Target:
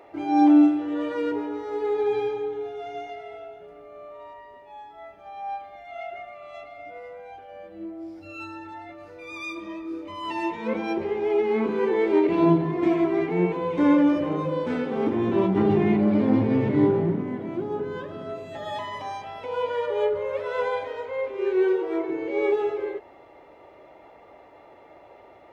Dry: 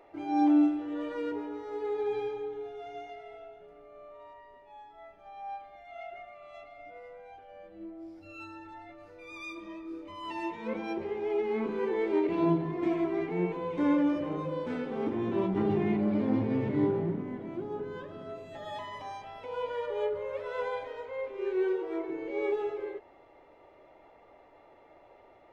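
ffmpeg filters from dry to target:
ffmpeg -i in.wav -af "highpass=50,volume=7.5dB" out.wav

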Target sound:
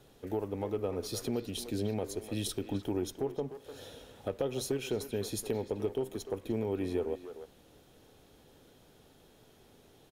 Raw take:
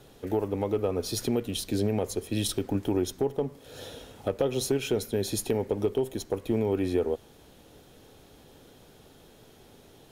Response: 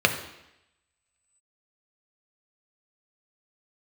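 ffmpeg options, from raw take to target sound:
-filter_complex "[0:a]asplit=2[link_01][link_02];[link_02]adelay=300,highpass=300,lowpass=3400,asoftclip=type=hard:threshold=-23dB,volume=-10dB[link_03];[link_01][link_03]amix=inputs=2:normalize=0,volume=-6.5dB"

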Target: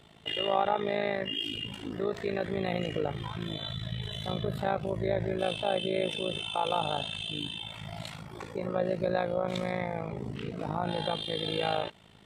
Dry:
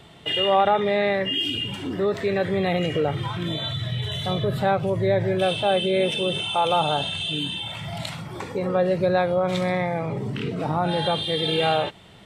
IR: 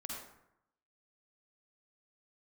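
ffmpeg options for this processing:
-af "tremolo=f=54:d=0.824,volume=-5dB"

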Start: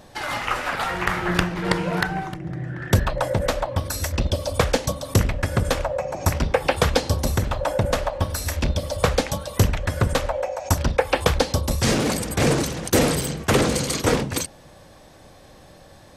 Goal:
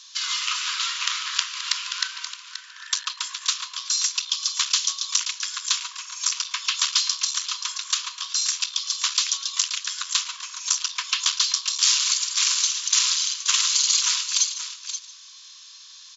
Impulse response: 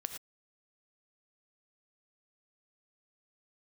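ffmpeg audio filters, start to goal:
-filter_complex "[0:a]aeval=exprs='clip(val(0),-1,0.0473)':channel_layout=same,asplit=2[link_01][link_02];[link_02]aecho=0:1:529:0.266[link_03];[link_01][link_03]amix=inputs=2:normalize=0,aexciter=amount=4.1:drive=9.2:freq=2800,afftfilt=real='re*between(b*sr/4096,950,7500)':imag='im*between(b*sr/4096,950,7500)':win_size=4096:overlap=0.75,asplit=2[link_04][link_05];[link_05]aecho=0:1:147|294|441:0.158|0.0444|0.0124[link_06];[link_04][link_06]amix=inputs=2:normalize=0,volume=-5dB"

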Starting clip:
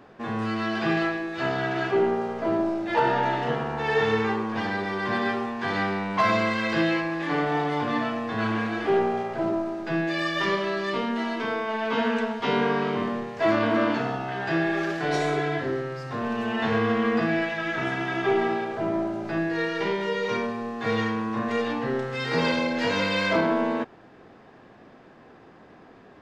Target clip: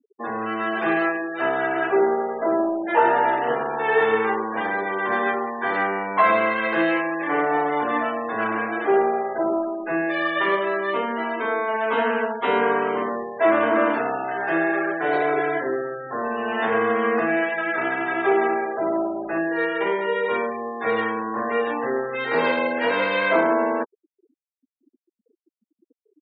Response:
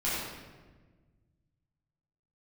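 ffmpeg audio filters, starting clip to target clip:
-filter_complex "[0:a]lowpass=frequency=4200:width=0.5412,lowpass=frequency=4200:width=1.3066,afftfilt=real='re*gte(hypot(re,im),0.0251)':imag='im*gte(hypot(re,im),0.0251)':win_size=1024:overlap=0.75,acrossover=split=290 3000:gain=0.0891 1 0.1[link_01][link_02][link_03];[link_01][link_02][link_03]amix=inputs=3:normalize=0,volume=5.5dB"

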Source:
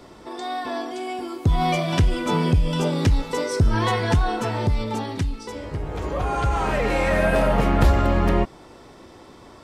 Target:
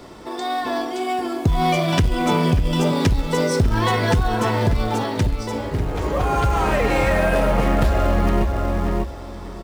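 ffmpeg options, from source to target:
ffmpeg -i in.wav -filter_complex "[0:a]asplit=2[link_01][link_02];[link_02]adelay=592,lowpass=frequency=2000:poles=1,volume=-7dB,asplit=2[link_03][link_04];[link_04]adelay=592,lowpass=frequency=2000:poles=1,volume=0.21,asplit=2[link_05][link_06];[link_06]adelay=592,lowpass=frequency=2000:poles=1,volume=0.21[link_07];[link_01][link_03][link_05][link_07]amix=inputs=4:normalize=0,asplit=2[link_08][link_09];[link_09]acrusher=bits=3:mode=log:mix=0:aa=0.000001,volume=-9dB[link_10];[link_08][link_10]amix=inputs=2:normalize=0,acompressor=threshold=-16dB:ratio=5,volume=2dB" out.wav

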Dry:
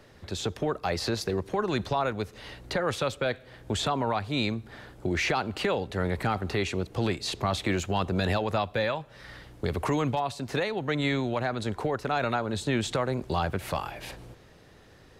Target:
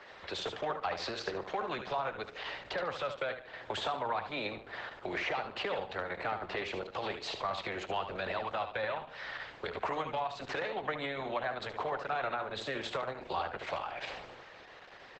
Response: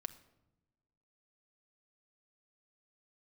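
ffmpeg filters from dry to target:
-filter_complex "[0:a]acrossover=split=530 4100:gain=0.0794 1 0.0891[link_01][link_02][link_03];[link_01][link_02][link_03]amix=inputs=3:normalize=0,acrossover=split=210|880[link_04][link_05][link_06];[link_04]acompressor=threshold=-57dB:ratio=4[link_07];[link_05]acompressor=threshold=-45dB:ratio=4[link_08];[link_06]acompressor=threshold=-47dB:ratio=4[link_09];[link_07][link_08][link_09]amix=inputs=3:normalize=0,aecho=1:1:73|146|219|292:0.398|0.123|0.0383|0.0119,asplit=2[link_10][link_11];[1:a]atrim=start_sample=2205[link_12];[link_11][link_12]afir=irnorm=-1:irlink=0,volume=-7.5dB[link_13];[link_10][link_13]amix=inputs=2:normalize=0,volume=6dB" -ar 48000 -c:a libopus -b:a 10k

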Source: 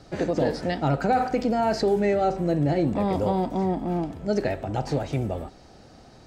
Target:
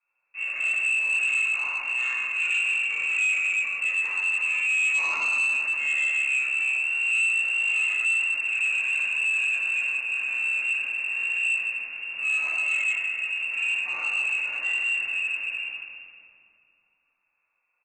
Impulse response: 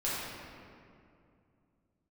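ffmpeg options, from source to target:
-filter_complex "[0:a]acrossover=split=230[link_01][link_02];[link_01]acrusher=bits=6:mix=0:aa=0.000001[link_03];[link_03][link_02]amix=inputs=2:normalize=0,asetrate=15479,aresample=44100,lowpass=frequency=2400:width_type=q:width=0.5098,lowpass=frequency=2400:width_type=q:width=0.6013,lowpass=frequency=2400:width_type=q:width=0.9,lowpass=frequency=2400:width_type=q:width=2.563,afreqshift=-2800,agate=range=-25dB:threshold=-46dB:ratio=16:detection=peak[link_04];[1:a]atrim=start_sample=2205[link_05];[link_04][link_05]afir=irnorm=-1:irlink=0,aresample=16000,asoftclip=type=tanh:threshold=-15.5dB,aresample=44100,volume=-4.5dB"

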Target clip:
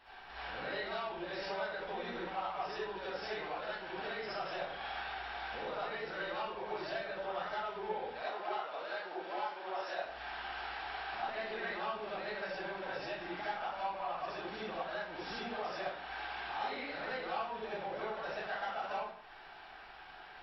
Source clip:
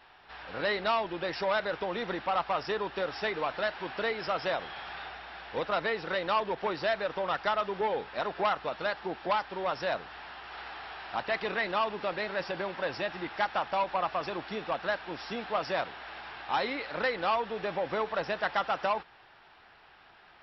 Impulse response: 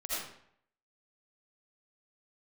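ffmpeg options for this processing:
-filter_complex "[0:a]asettb=1/sr,asplit=3[link_01][link_02][link_03];[link_01]atrim=end=8.154[link_04];[link_02]atrim=start=8.15:end=10.04,asetpts=PTS-STARTPTS,afade=type=in:duration=0.004:curve=qsin,afade=type=out:start_time=1.886:duration=0.004:curve=qsin,highpass=360[link_05];[link_03]atrim=start=10.036[link_06];[link_04][link_05]acrossfade=duration=0.004:curve1=hsin:curve2=qsin[link_07];[link_07][link_06]acrossfade=duration=0.004:curve1=qsin:curve2=hsin,acompressor=threshold=-44dB:ratio=3[link_08];[1:a]atrim=start_sample=2205,asetrate=52920,aresample=44100[link_09];[link_08][link_09]afir=irnorm=-1:irlink=0,volume=1.5dB"

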